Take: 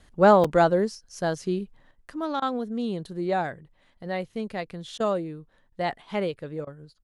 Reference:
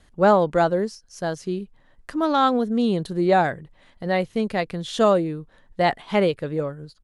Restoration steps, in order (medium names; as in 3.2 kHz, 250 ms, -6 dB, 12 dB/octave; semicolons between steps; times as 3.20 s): interpolate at 0.44 s, 4.9 ms; interpolate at 2.40/4.98/5.70/6.65 s, 19 ms; trim 0 dB, from 1.91 s +8 dB